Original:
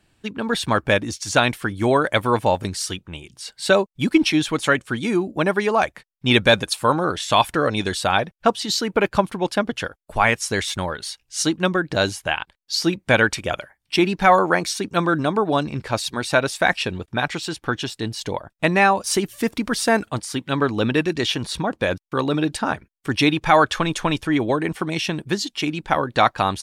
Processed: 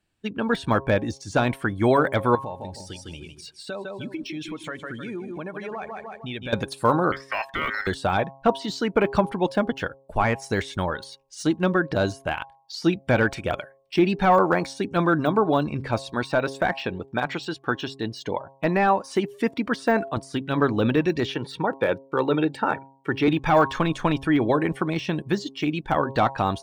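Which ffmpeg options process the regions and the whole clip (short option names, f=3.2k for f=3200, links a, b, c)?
-filter_complex "[0:a]asettb=1/sr,asplit=3[a][b][c];[a]atrim=end=2.354[d];[b]atrim=start=2.35:end=6.53,asetpts=PTS-STARTPTS,afade=t=in:d=0.004:c=qsin,afade=t=out:st=4.176:d=0.004:c=qsin,aecho=1:1:154|308|462|616:0.355|0.135|0.0512|0.0195,atrim=end_sample=184338,acompressor=threshold=-32dB:ratio=4:attack=3.2:release=140:knee=1:detection=peak[e];[c]atrim=start=6.526[f];[d][e]acrossfade=d=0.004:c1=hsin:c2=qsin[g];[g][f]acrossfade=d=0.004:c1=qsin:c2=hsin,asettb=1/sr,asplit=3[h][i][j];[h]atrim=end=7.124[k];[i]atrim=start=7.12:end=7.87,asetpts=PTS-STARTPTS,afade=t=in:d=0.004:c=qsin,afade=t=out:st=0.746:d=0.004:c=qsin,deesser=0.95,aeval=exprs='val(0)*sin(2*PI*1700*n/s)':c=same[l];[j]atrim=start=7.866[m];[k][l]acrossfade=d=0.004:c1=hsin:c2=qsin[n];[n][m]acrossfade=d=0.004:c1=qsin:c2=hsin,asettb=1/sr,asplit=3[o][p][q];[o]atrim=end=16.234[r];[p]atrim=start=16.23:end=20.17,asetpts=PTS-STARTPTS,afade=t=in:d=0.004:c=qsin,afade=t=out:st=3.936:d=0.004:c=qsin,highpass=f=180:p=1,highshelf=f=6.2k:g=-8.5[s];[q]atrim=start=20.166[t];[r][s]acrossfade=d=0.004:c1=hsin:c2=qsin[u];[u][t]acrossfade=d=0.004:c1=qsin:c2=hsin,asettb=1/sr,asplit=3[v][w][x];[v]atrim=end=21.344[y];[w]atrim=start=21.34:end=23.28,asetpts=PTS-STARTPTS,afade=t=in:d=0.004:c=qsin,afade=t=out:st=1.936:d=0.004:c=qsin,highpass=f=120:w=0.5412,highpass=f=120:w=1.3066,bass=f=250:g=-2,treble=f=4k:g=-10,aecho=1:1:2.2:0.37,atrim=end_sample=85554[z];[x]atrim=start=23.276[aa];[y][z]acrossfade=d=0.004:c1=hsin:c2=qsin[ab];[ab][aa]acrossfade=d=0.004:c1=qsin:c2=hsin,afftdn=nr=13:nf=-40,bandreject=f=135.4:t=h:w=4,bandreject=f=270.8:t=h:w=4,bandreject=f=406.2:t=h:w=4,bandreject=f=541.6:t=h:w=4,bandreject=f=677:t=h:w=4,bandreject=f=812.4:t=h:w=4,bandreject=f=947.8:t=h:w=4,bandreject=f=1.0832k:t=h:w=4,deesser=0.95"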